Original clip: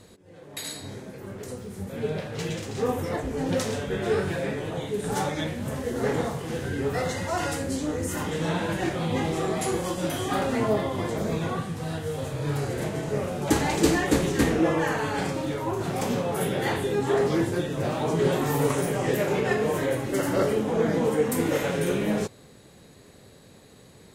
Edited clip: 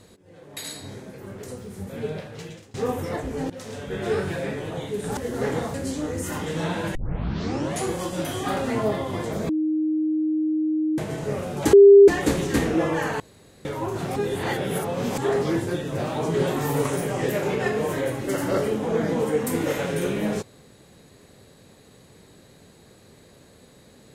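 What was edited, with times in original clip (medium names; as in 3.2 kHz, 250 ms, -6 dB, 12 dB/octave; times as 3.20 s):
1.97–2.74 s: fade out, to -21.5 dB
3.50–4.05 s: fade in, from -19.5 dB
5.17–5.79 s: delete
6.36–7.59 s: delete
8.80 s: tape start 0.87 s
11.34–12.83 s: bleep 311 Hz -20 dBFS
13.58–13.93 s: bleep 400 Hz -6 dBFS
15.05–15.50 s: room tone
16.01–17.03 s: reverse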